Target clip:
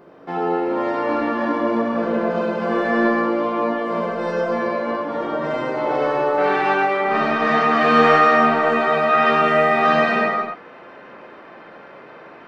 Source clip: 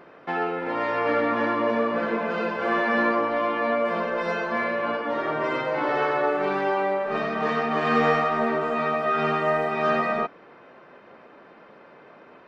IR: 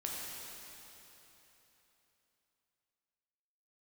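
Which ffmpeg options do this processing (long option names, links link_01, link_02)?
-filter_complex "[0:a]asetnsamples=nb_out_samples=441:pad=0,asendcmd='6.38 equalizer g 2.5',equalizer=frequency=2100:width=0.57:gain=-9.5[link_01];[1:a]atrim=start_sample=2205,afade=type=out:start_time=0.34:duration=0.01,atrim=end_sample=15435[link_02];[link_01][link_02]afir=irnorm=-1:irlink=0,volume=6dB"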